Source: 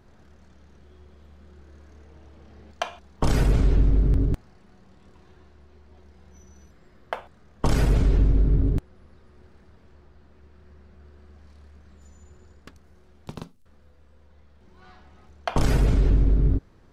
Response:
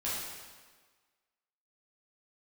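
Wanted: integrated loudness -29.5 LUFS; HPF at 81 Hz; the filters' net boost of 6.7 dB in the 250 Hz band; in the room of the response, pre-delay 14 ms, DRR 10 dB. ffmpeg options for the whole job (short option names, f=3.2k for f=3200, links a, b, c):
-filter_complex "[0:a]highpass=81,equalizer=f=250:t=o:g=8.5,asplit=2[a][b];[1:a]atrim=start_sample=2205,adelay=14[c];[b][c]afir=irnorm=-1:irlink=0,volume=-15.5dB[d];[a][d]amix=inputs=2:normalize=0,volume=-5.5dB"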